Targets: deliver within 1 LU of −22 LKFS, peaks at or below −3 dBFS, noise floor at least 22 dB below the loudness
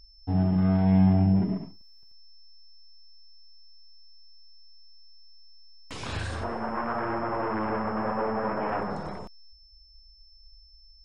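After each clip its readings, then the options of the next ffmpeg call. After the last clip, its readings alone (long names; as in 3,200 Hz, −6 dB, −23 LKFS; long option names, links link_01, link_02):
interfering tone 5,300 Hz; level of the tone −55 dBFS; integrated loudness −27.0 LKFS; sample peak −11.0 dBFS; target loudness −22.0 LKFS
→ -af "bandreject=frequency=5300:width=30"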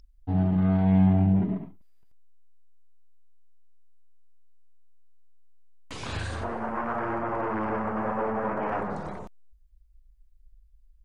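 interfering tone none found; integrated loudness −27.0 LKFS; sample peak −11.0 dBFS; target loudness −22.0 LKFS
→ -af "volume=5dB"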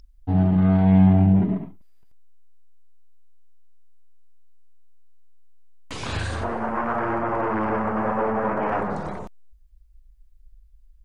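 integrated loudness −22.0 LKFS; sample peak −6.0 dBFS; background noise floor −53 dBFS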